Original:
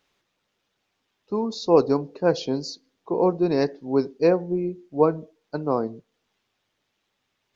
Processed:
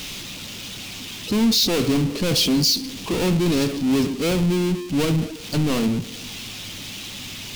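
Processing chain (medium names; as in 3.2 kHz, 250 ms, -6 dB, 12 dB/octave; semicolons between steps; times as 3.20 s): power-law waveshaper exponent 0.35; high-order bell 830 Hz -12 dB 2.7 oct; trim -2 dB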